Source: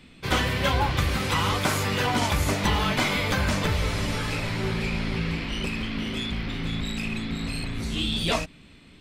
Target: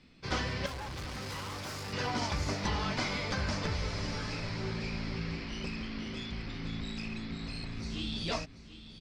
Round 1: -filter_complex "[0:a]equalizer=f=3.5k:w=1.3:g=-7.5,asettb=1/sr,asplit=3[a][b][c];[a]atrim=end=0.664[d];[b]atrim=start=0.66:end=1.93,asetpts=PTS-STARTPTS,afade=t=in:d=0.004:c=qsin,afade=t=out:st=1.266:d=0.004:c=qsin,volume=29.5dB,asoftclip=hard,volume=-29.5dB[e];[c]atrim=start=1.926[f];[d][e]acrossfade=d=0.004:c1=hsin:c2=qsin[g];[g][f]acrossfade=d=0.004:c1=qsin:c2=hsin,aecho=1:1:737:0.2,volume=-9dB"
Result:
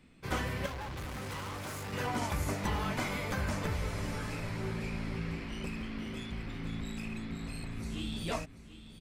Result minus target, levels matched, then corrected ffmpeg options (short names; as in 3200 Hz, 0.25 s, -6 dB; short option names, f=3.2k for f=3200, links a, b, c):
4000 Hz band -5.0 dB
-filter_complex "[0:a]lowpass=f=5k:t=q:w=3.3,equalizer=f=3.5k:w=1.3:g=-7.5,asettb=1/sr,asplit=3[a][b][c];[a]atrim=end=0.664[d];[b]atrim=start=0.66:end=1.93,asetpts=PTS-STARTPTS,afade=t=in:d=0.004:c=qsin,afade=t=out:st=1.266:d=0.004:c=qsin,volume=29.5dB,asoftclip=hard,volume=-29.5dB[e];[c]atrim=start=1.926[f];[d][e]acrossfade=d=0.004:c1=hsin:c2=qsin[g];[g][f]acrossfade=d=0.004:c1=qsin:c2=hsin,aecho=1:1:737:0.2,volume=-9dB"